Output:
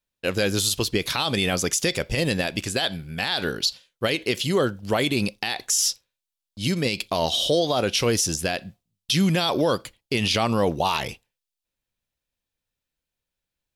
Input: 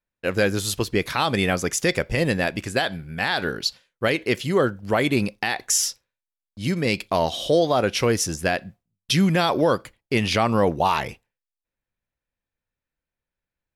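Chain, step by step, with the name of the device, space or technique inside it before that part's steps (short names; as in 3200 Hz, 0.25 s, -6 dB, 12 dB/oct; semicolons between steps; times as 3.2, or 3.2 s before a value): over-bright horn tweeter (resonant high shelf 2500 Hz +6 dB, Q 1.5; limiter -12 dBFS, peak gain reduction 9.5 dB)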